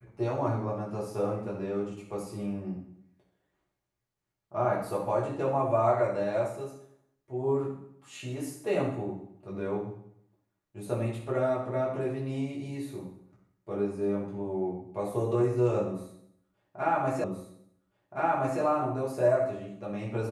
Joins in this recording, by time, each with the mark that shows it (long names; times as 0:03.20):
0:17.24: the same again, the last 1.37 s